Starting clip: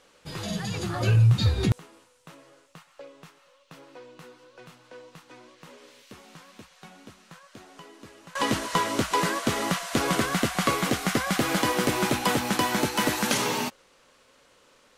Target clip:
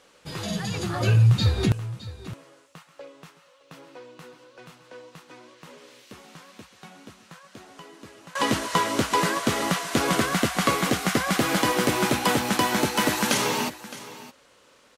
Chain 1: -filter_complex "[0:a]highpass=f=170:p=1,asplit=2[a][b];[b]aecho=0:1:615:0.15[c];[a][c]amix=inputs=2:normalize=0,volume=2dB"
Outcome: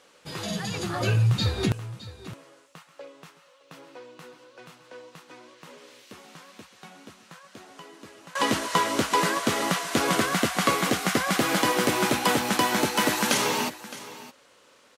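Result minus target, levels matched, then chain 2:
125 Hz band -3.5 dB
-filter_complex "[0:a]highpass=f=44:p=1,asplit=2[a][b];[b]aecho=0:1:615:0.15[c];[a][c]amix=inputs=2:normalize=0,volume=2dB"

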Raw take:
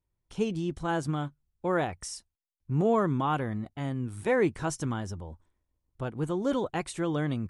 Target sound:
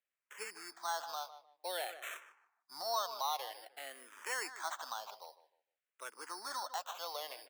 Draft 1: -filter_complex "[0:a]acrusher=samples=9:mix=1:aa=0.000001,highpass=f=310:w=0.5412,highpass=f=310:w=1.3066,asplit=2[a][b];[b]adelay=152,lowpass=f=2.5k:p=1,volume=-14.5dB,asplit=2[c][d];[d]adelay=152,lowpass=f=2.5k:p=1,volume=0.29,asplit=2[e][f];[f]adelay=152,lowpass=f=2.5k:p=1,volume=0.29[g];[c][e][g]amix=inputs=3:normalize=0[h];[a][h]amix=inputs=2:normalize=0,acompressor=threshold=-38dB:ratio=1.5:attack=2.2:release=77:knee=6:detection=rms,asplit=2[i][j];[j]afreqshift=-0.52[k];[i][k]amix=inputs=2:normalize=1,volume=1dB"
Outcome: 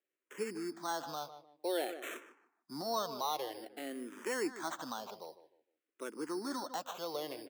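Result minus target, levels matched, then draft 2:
250 Hz band +20.0 dB
-filter_complex "[0:a]acrusher=samples=9:mix=1:aa=0.000001,highpass=f=680:w=0.5412,highpass=f=680:w=1.3066,asplit=2[a][b];[b]adelay=152,lowpass=f=2.5k:p=1,volume=-14.5dB,asplit=2[c][d];[d]adelay=152,lowpass=f=2.5k:p=1,volume=0.29,asplit=2[e][f];[f]adelay=152,lowpass=f=2.5k:p=1,volume=0.29[g];[c][e][g]amix=inputs=3:normalize=0[h];[a][h]amix=inputs=2:normalize=0,acompressor=threshold=-38dB:ratio=1.5:attack=2.2:release=77:knee=6:detection=rms,asplit=2[i][j];[j]afreqshift=-0.52[k];[i][k]amix=inputs=2:normalize=1,volume=1dB"

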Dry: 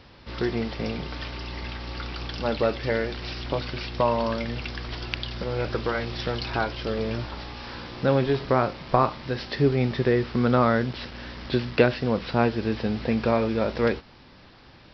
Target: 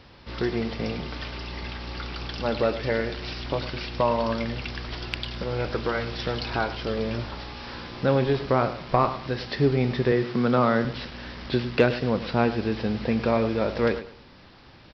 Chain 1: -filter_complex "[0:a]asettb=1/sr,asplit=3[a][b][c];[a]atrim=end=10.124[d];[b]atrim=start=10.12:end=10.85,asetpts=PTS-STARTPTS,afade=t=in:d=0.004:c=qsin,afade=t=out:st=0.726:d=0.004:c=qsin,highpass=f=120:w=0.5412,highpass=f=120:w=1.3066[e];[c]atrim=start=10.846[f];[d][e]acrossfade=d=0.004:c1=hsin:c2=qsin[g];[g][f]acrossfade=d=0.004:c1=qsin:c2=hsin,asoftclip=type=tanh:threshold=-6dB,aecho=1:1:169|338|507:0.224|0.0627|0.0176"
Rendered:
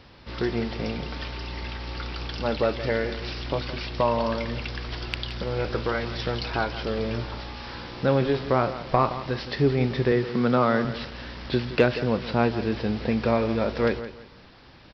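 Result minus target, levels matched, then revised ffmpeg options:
echo 64 ms late
-filter_complex "[0:a]asettb=1/sr,asplit=3[a][b][c];[a]atrim=end=10.124[d];[b]atrim=start=10.12:end=10.85,asetpts=PTS-STARTPTS,afade=t=in:d=0.004:c=qsin,afade=t=out:st=0.726:d=0.004:c=qsin,highpass=f=120:w=0.5412,highpass=f=120:w=1.3066[e];[c]atrim=start=10.846[f];[d][e]acrossfade=d=0.004:c1=hsin:c2=qsin[g];[g][f]acrossfade=d=0.004:c1=qsin:c2=hsin,asoftclip=type=tanh:threshold=-6dB,aecho=1:1:105|210|315:0.224|0.0627|0.0176"

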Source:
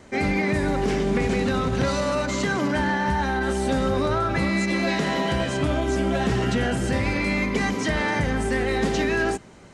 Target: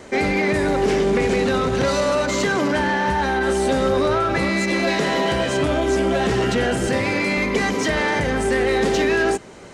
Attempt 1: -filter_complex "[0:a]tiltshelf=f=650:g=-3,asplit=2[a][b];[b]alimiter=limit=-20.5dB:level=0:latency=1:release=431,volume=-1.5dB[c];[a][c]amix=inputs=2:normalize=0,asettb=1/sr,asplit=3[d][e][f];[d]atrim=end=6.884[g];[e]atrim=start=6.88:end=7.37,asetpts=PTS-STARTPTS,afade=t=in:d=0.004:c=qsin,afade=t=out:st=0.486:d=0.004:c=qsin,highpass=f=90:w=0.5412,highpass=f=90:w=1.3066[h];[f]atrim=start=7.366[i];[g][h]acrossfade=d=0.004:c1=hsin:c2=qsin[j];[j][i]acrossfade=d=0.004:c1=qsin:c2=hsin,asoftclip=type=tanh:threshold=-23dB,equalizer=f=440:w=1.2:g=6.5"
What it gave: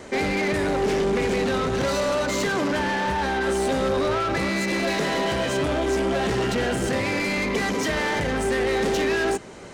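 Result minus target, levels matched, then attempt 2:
soft clip: distortion +9 dB
-filter_complex "[0:a]tiltshelf=f=650:g=-3,asplit=2[a][b];[b]alimiter=limit=-20.5dB:level=0:latency=1:release=431,volume=-1.5dB[c];[a][c]amix=inputs=2:normalize=0,asettb=1/sr,asplit=3[d][e][f];[d]atrim=end=6.884[g];[e]atrim=start=6.88:end=7.37,asetpts=PTS-STARTPTS,afade=t=in:d=0.004:c=qsin,afade=t=out:st=0.486:d=0.004:c=qsin,highpass=f=90:w=0.5412,highpass=f=90:w=1.3066[h];[f]atrim=start=7.366[i];[g][h]acrossfade=d=0.004:c1=hsin:c2=qsin[j];[j][i]acrossfade=d=0.004:c1=qsin:c2=hsin,asoftclip=type=tanh:threshold=-15dB,equalizer=f=440:w=1.2:g=6.5"

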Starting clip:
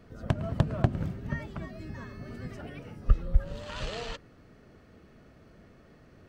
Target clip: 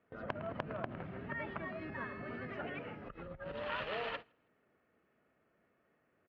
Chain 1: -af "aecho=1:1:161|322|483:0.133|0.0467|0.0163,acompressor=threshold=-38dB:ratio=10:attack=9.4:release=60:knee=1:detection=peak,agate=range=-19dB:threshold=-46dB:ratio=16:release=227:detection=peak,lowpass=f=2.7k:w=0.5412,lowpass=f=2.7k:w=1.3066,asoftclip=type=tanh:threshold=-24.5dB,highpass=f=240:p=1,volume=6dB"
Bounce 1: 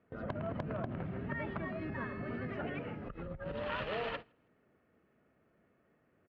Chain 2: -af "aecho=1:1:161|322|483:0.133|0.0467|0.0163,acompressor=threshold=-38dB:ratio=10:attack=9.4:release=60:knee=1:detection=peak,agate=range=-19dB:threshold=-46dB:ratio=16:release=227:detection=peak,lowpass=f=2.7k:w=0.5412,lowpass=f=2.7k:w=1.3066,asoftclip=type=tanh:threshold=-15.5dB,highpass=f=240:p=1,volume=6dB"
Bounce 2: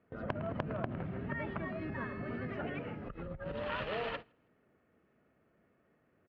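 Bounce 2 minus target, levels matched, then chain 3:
250 Hz band +3.0 dB
-af "aecho=1:1:161|322|483:0.133|0.0467|0.0163,acompressor=threshold=-38dB:ratio=10:attack=9.4:release=60:knee=1:detection=peak,agate=range=-19dB:threshold=-46dB:ratio=16:release=227:detection=peak,lowpass=f=2.7k:w=0.5412,lowpass=f=2.7k:w=1.3066,asoftclip=type=tanh:threshold=-15.5dB,highpass=f=610:p=1,volume=6dB"

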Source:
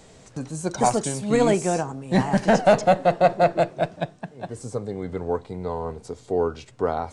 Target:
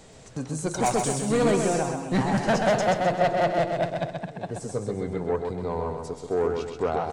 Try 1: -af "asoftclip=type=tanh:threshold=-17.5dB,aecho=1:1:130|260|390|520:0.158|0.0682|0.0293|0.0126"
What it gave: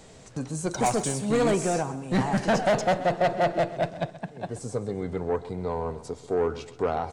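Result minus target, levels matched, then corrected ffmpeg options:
echo-to-direct -11 dB
-af "asoftclip=type=tanh:threshold=-17.5dB,aecho=1:1:130|260|390|520|650:0.562|0.242|0.104|0.0447|0.0192"

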